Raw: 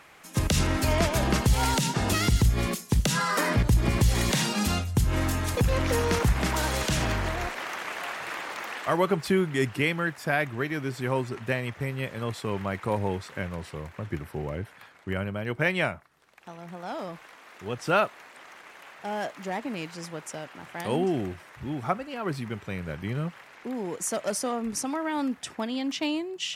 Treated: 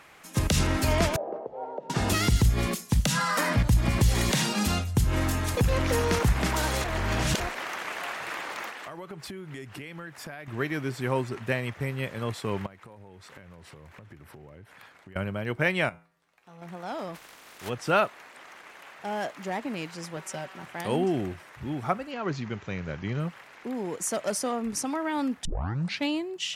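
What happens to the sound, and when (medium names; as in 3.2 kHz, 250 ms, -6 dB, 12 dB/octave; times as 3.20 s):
1.16–1.90 s: Butterworth band-pass 560 Hz, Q 1.8
2.91–3.98 s: peaking EQ 390 Hz -15 dB 0.25 oct
6.84–7.40 s: reverse
8.69–10.48 s: compression 12:1, threshold -36 dBFS
12.66–15.16 s: compression 10:1, threshold -44 dBFS
15.89–16.62 s: feedback comb 56 Hz, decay 0.41 s, harmonics odd, mix 80%
17.14–17.68 s: spectral contrast reduction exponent 0.53
20.16–20.65 s: comb 5.3 ms
22.11–23.20 s: careless resampling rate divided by 3×, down none, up filtered
25.45 s: tape start 0.63 s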